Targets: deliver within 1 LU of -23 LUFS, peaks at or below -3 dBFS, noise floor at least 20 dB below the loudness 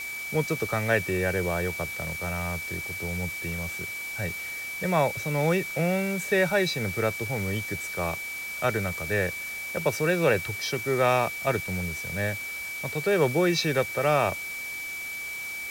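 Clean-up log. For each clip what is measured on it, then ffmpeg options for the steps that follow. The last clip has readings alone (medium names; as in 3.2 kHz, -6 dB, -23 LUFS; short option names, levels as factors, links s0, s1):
steady tone 2.3 kHz; tone level -33 dBFS; noise floor -35 dBFS; noise floor target -48 dBFS; loudness -27.5 LUFS; peak level -10.0 dBFS; loudness target -23.0 LUFS
-> -af "bandreject=f=2300:w=30"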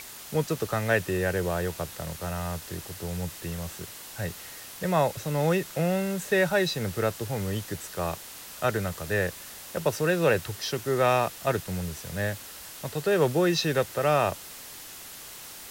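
steady tone not found; noise floor -43 dBFS; noise floor target -48 dBFS
-> -af "afftdn=nr=6:nf=-43"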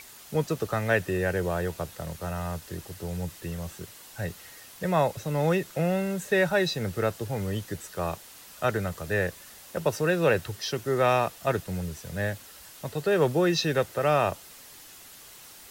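noise floor -49 dBFS; loudness -28.0 LUFS; peak level -10.5 dBFS; loudness target -23.0 LUFS
-> -af "volume=1.78"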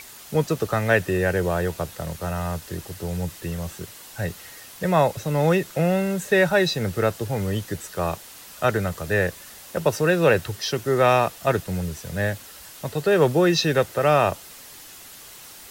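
loudness -23.0 LUFS; peak level -5.5 dBFS; noise floor -44 dBFS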